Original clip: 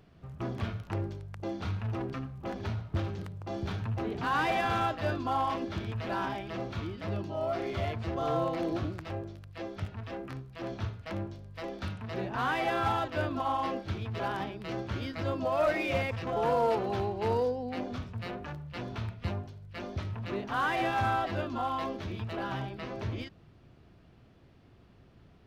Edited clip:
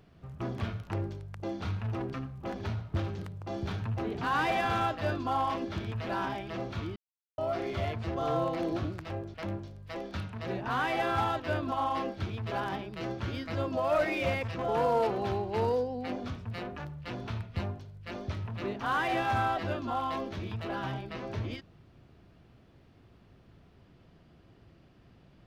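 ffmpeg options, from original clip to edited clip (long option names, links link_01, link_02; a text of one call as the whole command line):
ffmpeg -i in.wav -filter_complex "[0:a]asplit=4[link_01][link_02][link_03][link_04];[link_01]atrim=end=6.96,asetpts=PTS-STARTPTS,afade=type=out:start_time=6.956:duration=0.004:curve=hsin[link_05];[link_02]atrim=start=6.96:end=7.38,asetpts=PTS-STARTPTS,volume=0[link_06];[link_03]atrim=start=7.38:end=9.342,asetpts=PTS-STARTPTS,afade=type=in:duration=0.004:curve=hsin[link_07];[link_04]atrim=start=11.018[link_08];[link_05][link_06][link_07]concat=n=3:v=0:a=1[link_09];[link_09][link_08]acrossfade=duration=0.004:curve1=hsin:curve2=hsin" out.wav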